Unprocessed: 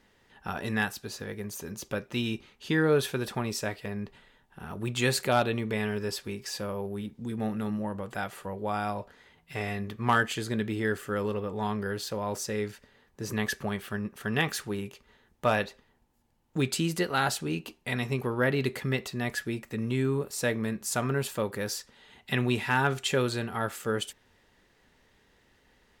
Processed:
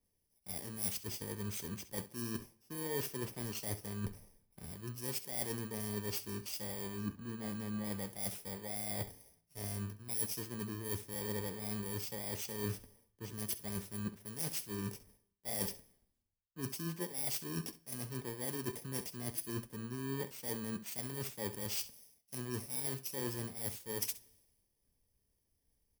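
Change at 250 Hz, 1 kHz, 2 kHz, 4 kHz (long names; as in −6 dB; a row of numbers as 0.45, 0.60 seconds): −11.0, −17.5, −18.0, −10.0 decibels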